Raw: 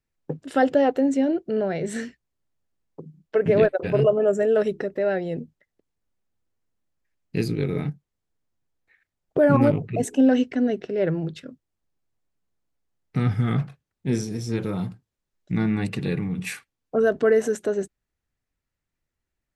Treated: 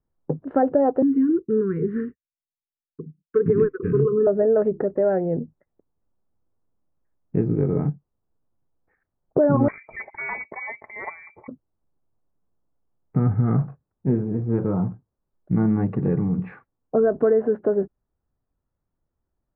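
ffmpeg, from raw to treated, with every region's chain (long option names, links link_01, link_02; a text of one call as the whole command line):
ffmpeg -i in.wav -filter_complex "[0:a]asettb=1/sr,asplit=3[link_01][link_02][link_03];[link_01]atrim=end=1.024[link_04];[link_02]atrim=start=1.02:end=4.27,asetpts=PTS-STARTPTS,afade=type=in:duration=0.004:curve=qsin,afade=type=out:start_time=3.246:duration=0.004:curve=qsin,agate=range=-33dB:threshold=-41dB:ratio=3:release=100:detection=peak,asuperstop=centerf=710:order=20:qfactor=1.2[link_05];[link_03]atrim=start=4.266[link_06];[link_04][link_05]acrossfade=duration=0.004:curve1=hsin:curve2=qsin[link_07];[link_07][link_06]acrossfade=duration=0.004:curve1=qsin:curve2=hsin,asettb=1/sr,asplit=3[link_08][link_09][link_10];[link_08]atrim=end=9.684[link_11];[link_09]atrim=start=9.68:end=11.48,asetpts=PTS-STARTPTS,afade=type=in:duration=0.004:curve=qsin,afade=type=out:start_time=1.796:duration=0.004:curve=qsin,asoftclip=type=hard:threshold=-14.5dB,aecho=1:1:4.3:0.44,atrim=end_sample=79380,lowpass=frequency=2100:width_type=q:width=0.5098,lowpass=frequency=2100:width_type=q:width=0.6013,lowpass=frequency=2100:width_type=q:width=0.9,lowpass=frequency=2100:width_type=q:width=2.563,afreqshift=-2500[link_12];[link_10]atrim=start=11.476[link_13];[link_11][link_12]acrossfade=duration=0.004:curve1=hsin:curve2=qsin[link_14];[link_14][link_13]acrossfade=duration=0.004:curve1=qsin:curve2=hsin,lowpass=frequency=1200:width=0.5412,lowpass=frequency=1200:width=1.3066,acompressor=threshold=-21dB:ratio=3,volume=5dB" out.wav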